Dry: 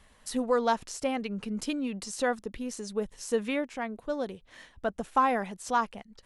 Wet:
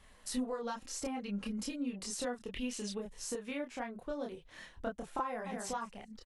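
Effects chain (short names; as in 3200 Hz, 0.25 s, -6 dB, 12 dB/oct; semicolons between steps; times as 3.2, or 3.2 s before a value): 0.62–1.9 comb 3.7 ms, depth 52%; 2.41–2.98 bell 2900 Hz +12.5 dB 0.72 oct; 3.96–4.49 expander -48 dBFS; 5.25–5.66 echo throw 0.21 s, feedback 10%, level -11 dB; compressor 12:1, threshold -34 dBFS, peak gain reduction 16 dB; chorus voices 6, 0.4 Hz, delay 28 ms, depth 4.2 ms; gain +2 dB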